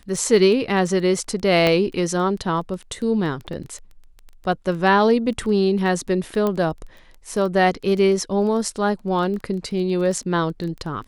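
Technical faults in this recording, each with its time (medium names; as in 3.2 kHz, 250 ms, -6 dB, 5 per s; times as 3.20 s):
crackle 13 per s -28 dBFS
1.67 s: pop -6 dBFS
3.53 s: dropout 2.1 ms
6.47 s: pop -11 dBFS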